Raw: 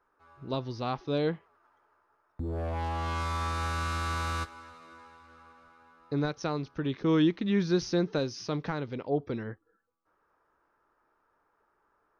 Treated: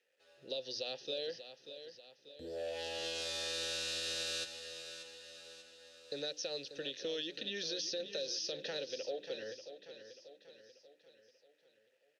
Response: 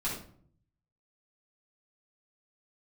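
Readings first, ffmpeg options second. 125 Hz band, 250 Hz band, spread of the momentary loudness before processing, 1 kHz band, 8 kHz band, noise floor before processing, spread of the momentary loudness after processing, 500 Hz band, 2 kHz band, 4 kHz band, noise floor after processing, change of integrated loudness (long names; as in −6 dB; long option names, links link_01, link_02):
−27.5 dB, −21.5 dB, 12 LU, −19.5 dB, +3.5 dB, −74 dBFS, 19 LU, −7.5 dB, −6.5 dB, +4.5 dB, −73 dBFS, −8.5 dB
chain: -filter_complex "[0:a]acrossover=split=510|1100[link_01][link_02][link_03];[link_03]aexciter=amount=14.6:drive=7.4:freq=3300[link_04];[link_01][link_02][link_04]amix=inputs=3:normalize=0,acrusher=bits=9:mix=0:aa=0.000001,asplit=3[link_05][link_06][link_07];[link_05]bandpass=frequency=530:width_type=q:width=8,volume=0dB[link_08];[link_06]bandpass=frequency=1840:width_type=q:width=8,volume=-6dB[link_09];[link_07]bandpass=frequency=2480:width_type=q:width=8,volume=-9dB[link_10];[link_08][link_09][link_10]amix=inputs=3:normalize=0,alimiter=level_in=10dB:limit=-24dB:level=0:latency=1:release=100,volume=-10dB,acrossover=split=570|6600[link_11][link_12][link_13];[link_11]acompressor=threshold=-53dB:ratio=4[link_14];[link_12]acompressor=threshold=-45dB:ratio=4[link_15];[link_13]acompressor=threshold=-57dB:ratio=4[link_16];[link_14][link_15][link_16]amix=inputs=3:normalize=0,bandreject=frequency=60:width_type=h:width=6,bandreject=frequency=120:width_type=h:width=6,bandreject=frequency=180:width_type=h:width=6,bandreject=frequency=240:width_type=h:width=6,bandreject=frequency=300:width_type=h:width=6,aecho=1:1:588|1176|1764|2352|2940:0.282|0.141|0.0705|0.0352|0.0176,volume=7dB"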